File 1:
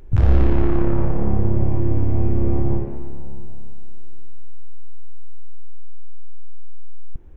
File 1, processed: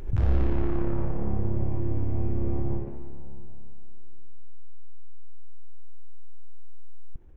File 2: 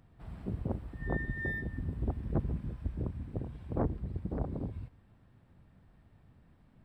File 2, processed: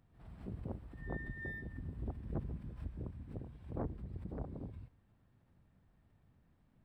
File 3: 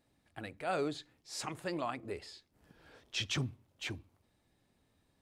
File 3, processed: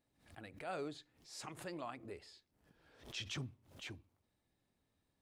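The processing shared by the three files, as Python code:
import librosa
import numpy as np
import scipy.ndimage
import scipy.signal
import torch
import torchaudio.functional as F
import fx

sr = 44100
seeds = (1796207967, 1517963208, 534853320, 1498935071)

y = fx.pre_swell(x, sr, db_per_s=120.0)
y = F.gain(torch.from_numpy(y), -8.5).numpy()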